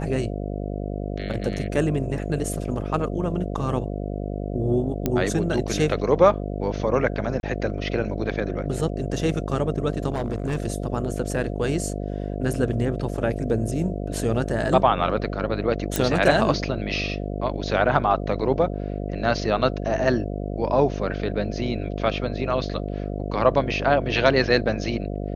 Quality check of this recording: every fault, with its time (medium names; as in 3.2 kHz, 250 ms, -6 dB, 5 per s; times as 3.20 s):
buzz 50 Hz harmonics 14 -29 dBFS
5.06 s: pop -9 dBFS
7.40–7.43 s: dropout 31 ms
10.12–10.57 s: clipped -20.5 dBFS
15.96 s: pop